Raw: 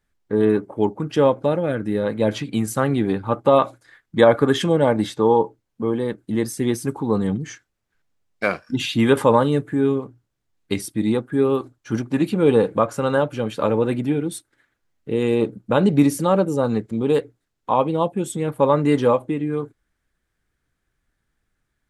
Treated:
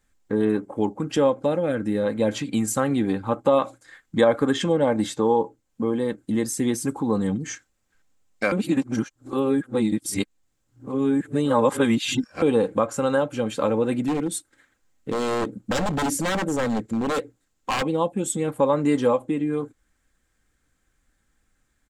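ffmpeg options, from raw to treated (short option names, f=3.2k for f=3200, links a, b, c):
-filter_complex "[0:a]asettb=1/sr,asplit=3[a][b][c];[a]atrim=end=4.514[d];[b]atrim=start=4.51:end=4.92,asetpts=PTS-STARTPTS,afade=t=in:d=0.004:c=qsin,afade=t=out:st=0.406:d=0.004:c=qsin,adynamicsmooth=sensitivity=0.5:basefreq=7.3k[e];[c]atrim=start=4.916[f];[d][e]acrossfade=d=0.004:c1=hsin:c2=qsin[g];[g][f]acrossfade=d=0.004:c1=qsin:c2=hsin,asettb=1/sr,asplit=3[h][i][j];[h]atrim=end=14.054[k];[i]atrim=start=14.05:end=17.83,asetpts=PTS-STARTPTS,afade=t=in:d=0.004:c=qsin,afade=t=out:st=3.776:d=0.004:c=qsin,aeval=exprs='0.133*(abs(mod(val(0)/0.133+3,4)-2)-1)':c=same[l];[j]atrim=start=17.826[m];[k][l]acrossfade=d=0.004:c1=hsin:c2=qsin[n];[n][m]acrossfade=d=0.004:c1=qsin:c2=hsin,asplit=3[o][p][q];[o]atrim=end=8.522[r];[p]atrim=start=8.518:end=12.422,asetpts=PTS-STARTPTS,areverse[s];[q]atrim=start=12.418[t];[r][s]acrossfade=d=0.004:c1=hsin:c2=hsin[u];[u][t]acrossfade=d=0.004:c1=hsin:c2=hsin,equalizer=f=7.4k:t=o:w=0.44:g=9,aecho=1:1:3.8:0.34,acompressor=threshold=-34dB:ratio=1.5,volume=3.5dB"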